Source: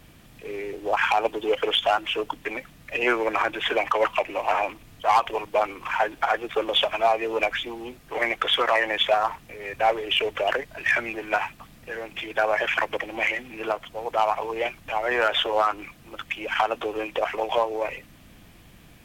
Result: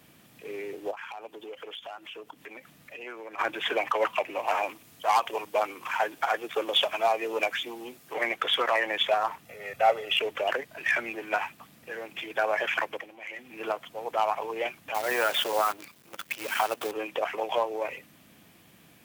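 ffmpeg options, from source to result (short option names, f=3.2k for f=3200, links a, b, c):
-filter_complex "[0:a]asplit=3[a][b][c];[a]afade=t=out:st=0.9:d=0.02[d];[b]acompressor=threshold=-41dB:ratio=2.5:attack=3.2:release=140:knee=1:detection=peak,afade=t=in:st=0.9:d=0.02,afade=t=out:st=3.38:d=0.02[e];[c]afade=t=in:st=3.38:d=0.02[f];[d][e][f]amix=inputs=3:normalize=0,asettb=1/sr,asplit=3[g][h][i];[g]atrim=end=4.474[j];[h]atrim=start=4.47:end=8.14,asetpts=PTS-STARTPTS,afade=t=in:d=0.004:c=qsin,afade=t=out:st=3.666:d=0.004:c=qsin,bass=f=250:g=-2,treble=f=4k:g=5[k];[i]atrim=start=8.136[l];[j][k]acrossfade=d=0.004:c1=hsin:c2=qsin[m];[m][l]acrossfade=d=0.004:c1=qsin:c2=hsin,asettb=1/sr,asplit=3[n][o][p];[n]atrim=end=9.454[q];[o]atrim=start=9.45:end=10.2,asetpts=PTS-STARTPTS,afade=t=in:d=0.004:c=qsin,afade=t=out:st=0.746:d=0.004:c=qsin,aecho=1:1:1.5:0.65,atrim=end_sample=33075[r];[p]atrim=start=10.196[s];[q][r]acrossfade=d=0.004:c1=hsin:c2=qsin[t];[t][s]acrossfade=d=0.004:c1=qsin:c2=hsin,asettb=1/sr,asplit=3[u][v][w];[u]atrim=end=14.944[x];[v]atrim=start=14.94:end=16.92,asetpts=PTS-STARTPTS,afade=t=in:d=0.004:c=qsin,afade=t=out:st=1.976:d=0.004:c=qsin,acrusher=bits=6:dc=4:mix=0:aa=0.000001[y];[w]atrim=start=16.916[z];[x][y]acrossfade=d=0.004:c1=hsin:c2=qsin[aa];[aa][z]acrossfade=d=0.004:c1=qsin:c2=hsin,asplit=3[ab][ac][ad];[ab]atrim=end=13.17,asetpts=PTS-STARTPTS,afade=t=out:st=12.78:d=0.39:silence=0.177828[ae];[ac]atrim=start=13.17:end=13.24,asetpts=PTS-STARTPTS,volume=-15dB[af];[ad]atrim=start=13.24,asetpts=PTS-STARTPTS,afade=t=in:d=0.39:silence=0.177828[ag];[ae][af][ag]concat=n=3:v=0:a=1,highpass=150,highshelf=f=11k:g=6.5,volume=-4dB"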